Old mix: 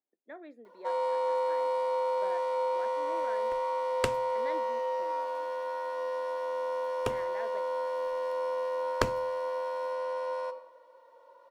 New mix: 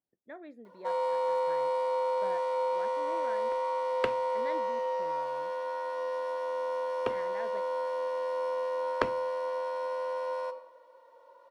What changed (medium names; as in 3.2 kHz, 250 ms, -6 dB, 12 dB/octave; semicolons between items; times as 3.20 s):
speech: remove high-pass 260 Hz 24 dB/octave; second sound: add three-band isolator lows -13 dB, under 200 Hz, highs -22 dB, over 3.7 kHz